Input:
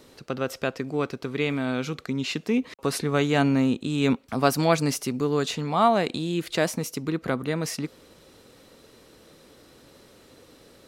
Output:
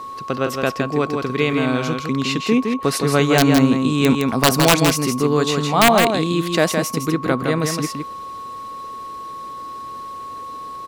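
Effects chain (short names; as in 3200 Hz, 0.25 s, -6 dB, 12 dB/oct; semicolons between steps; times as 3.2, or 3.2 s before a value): whine 1100 Hz -36 dBFS; wrapped overs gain 10.5 dB; echo 0.163 s -5 dB; gain +6.5 dB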